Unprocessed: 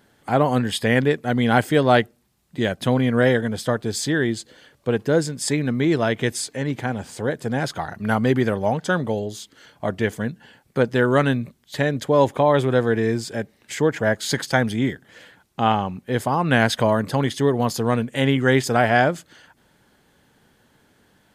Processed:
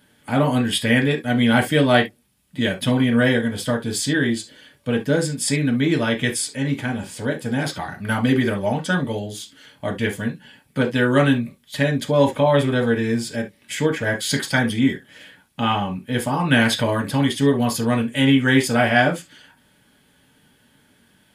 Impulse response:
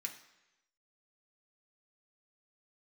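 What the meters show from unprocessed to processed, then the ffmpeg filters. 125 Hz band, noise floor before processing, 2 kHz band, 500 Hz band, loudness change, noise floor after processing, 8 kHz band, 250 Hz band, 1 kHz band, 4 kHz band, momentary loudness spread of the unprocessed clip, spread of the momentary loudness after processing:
+1.0 dB, -61 dBFS, +2.5 dB, -1.5 dB, +1.0 dB, -59 dBFS, +3.0 dB, +3.0 dB, -2.0 dB, +4.0 dB, 10 LU, 12 LU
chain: -filter_complex "[1:a]atrim=start_sample=2205,atrim=end_sample=4410,asetrate=57330,aresample=44100[s0];[0:a][s0]afir=irnorm=-1:irlink=0,volume=2.37"

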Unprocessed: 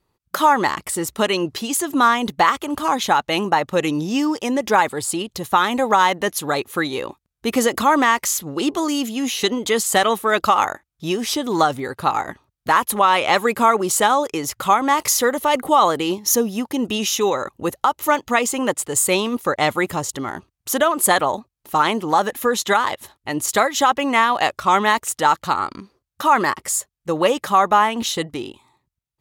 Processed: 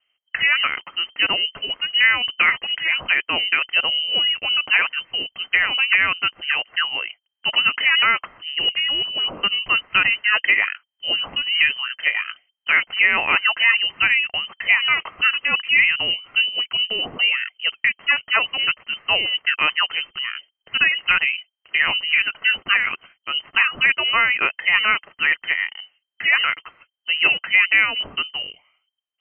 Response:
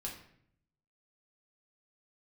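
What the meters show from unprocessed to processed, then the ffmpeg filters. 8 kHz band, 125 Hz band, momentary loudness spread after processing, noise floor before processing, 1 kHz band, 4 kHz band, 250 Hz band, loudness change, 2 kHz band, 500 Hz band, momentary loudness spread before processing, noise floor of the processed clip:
under -40 dB, under -10 dB, 9 LU, -76 dBFS, -12.0 dB, +8.0 dB, -20.5 dB, +1.0 dB, +7.5 dB, -17.5 dB, 9 LU, -77 dBFS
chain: -af "lowpass=f=2700:t=q:w=0.5098,lowpass=f=2700:t=q:w=0.6013,lowpass=f=2700:t=q:w=0.9,lowpass=f=2700:t=q:w=2.563,afreqshift=-3200,bandreject=f=2300:w=16"

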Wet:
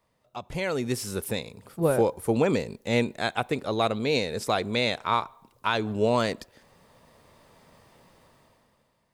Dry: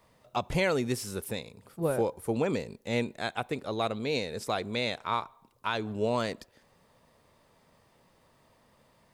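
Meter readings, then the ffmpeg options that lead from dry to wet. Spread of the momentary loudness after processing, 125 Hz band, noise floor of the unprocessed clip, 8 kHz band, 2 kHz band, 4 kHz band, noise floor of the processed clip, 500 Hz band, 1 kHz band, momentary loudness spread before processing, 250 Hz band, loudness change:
9 LU, +4.0 dB, -65 dBFS, +4.0 dB, +4.0 dB, +5.0 dB, -71 dBFS, +4.5 dB, +4.5 dB, 8 LU, +4.5 dB, +4.5 dB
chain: -af "dynaudnorm=f=150:g=11:m=6.31,volume=0.376"

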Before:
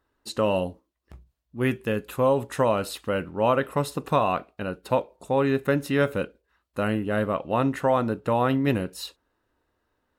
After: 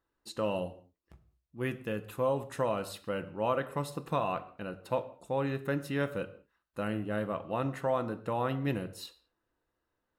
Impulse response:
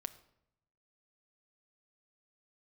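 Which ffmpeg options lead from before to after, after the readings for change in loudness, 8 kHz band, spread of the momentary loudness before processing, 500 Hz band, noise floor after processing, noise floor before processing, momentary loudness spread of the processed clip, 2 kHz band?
-8.5 dB, -9.0 dB, 11 LU, -8.5 dB, -84 dBFS, -76 dBFS, 11 LU, -8.5 dB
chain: -filter_complex "[1:a]atrim=start_sample=2205,afade=t=out:st=0.27:d=0.01,atrim=end_sample=12348[s0];[0:a][s0]afir=irnorm=-1:irlink=0,volume=0.501"

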